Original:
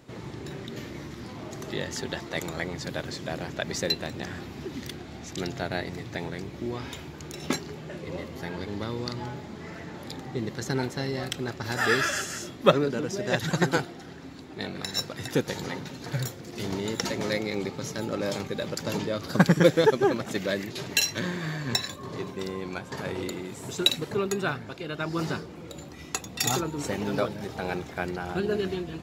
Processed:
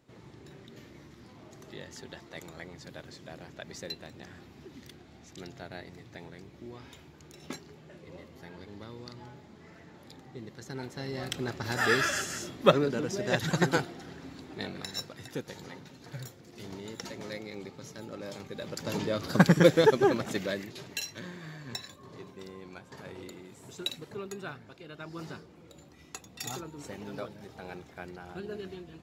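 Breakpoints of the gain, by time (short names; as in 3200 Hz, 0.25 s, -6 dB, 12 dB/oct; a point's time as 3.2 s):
10.69 s -12.5 dB
11.38 s -2 dB
14.53 s -2 dB
15.34 s -11.5 dB
18.35 s -11.5 dB
19.1 s -1 dB
20.26 s -1 dB
20.98 s -12 dB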